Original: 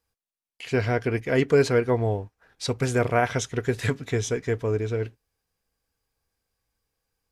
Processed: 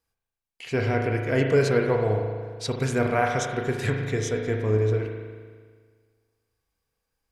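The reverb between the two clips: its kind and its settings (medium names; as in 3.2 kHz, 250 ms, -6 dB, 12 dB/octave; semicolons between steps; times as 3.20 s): spring tank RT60 1.7 s, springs 37 ms, chirp 55 ms, DRR 2 dB; trim -2 dB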